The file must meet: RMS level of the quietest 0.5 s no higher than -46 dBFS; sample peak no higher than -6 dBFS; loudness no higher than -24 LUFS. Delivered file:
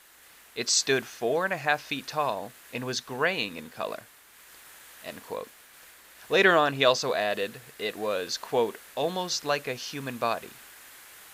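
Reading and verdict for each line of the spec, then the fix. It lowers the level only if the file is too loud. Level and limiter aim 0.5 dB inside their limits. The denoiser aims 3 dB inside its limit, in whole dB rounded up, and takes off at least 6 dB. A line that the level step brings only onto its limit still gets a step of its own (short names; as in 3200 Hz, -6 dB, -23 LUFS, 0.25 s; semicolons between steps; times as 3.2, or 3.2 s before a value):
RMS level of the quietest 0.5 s -54 dBFS: OK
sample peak -7.5 dBFS: OK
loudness -27.5 LUFS: OK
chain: none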